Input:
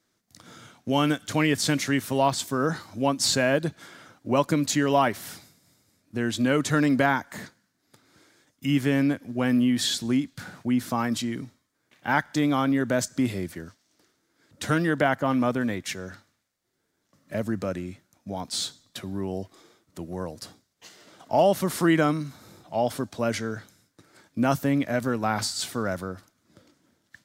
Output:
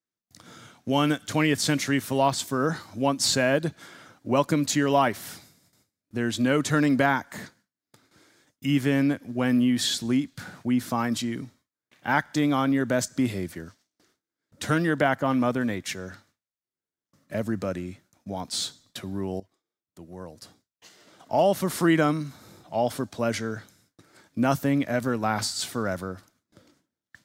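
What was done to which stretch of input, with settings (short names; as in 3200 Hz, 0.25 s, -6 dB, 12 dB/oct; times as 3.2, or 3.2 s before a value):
19.4–21.81 fade in, from -16.5 dB
whole clip: gate with hold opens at -51 dBFS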